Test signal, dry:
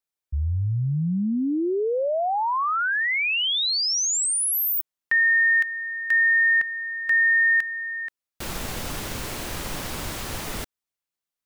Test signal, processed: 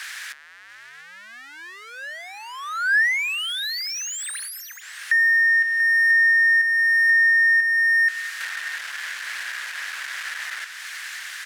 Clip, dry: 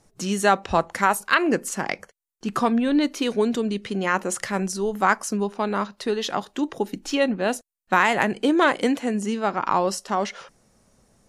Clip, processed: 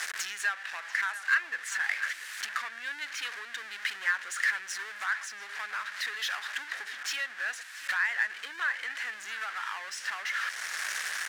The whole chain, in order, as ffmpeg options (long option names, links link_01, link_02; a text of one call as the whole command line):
ffmpeg -i in.wav -af "aeval=exprs='val(0)+0.5*0.0668*sgn(val(0))':channel_layout=same,acompressor=threshold=-27dB:ratio=4:attack=11:release=893:knee=1:detection=peak,highshelf=frequency=3600:gain=2.5,aecho=1:1:688:0.188,aeval=exprs='val(0)+0.00447*(sin(2*PI*60*n/s)+sin(2*PI*2*60*n/s)/2+sin(2*PI*3*60*n/s)/3+sin(2*PI*4*60*n/s)/4+sin(2*PI*5*60*n/s)/5)':channel_layout=same,adynamicsmooth=sensitivity=6:basefreq=4200,asoftclip=type=tanh:threshold=-21.5dB,highpass=frequency=1700:width_type=q:width=5.3,volume=-3dB" out.wav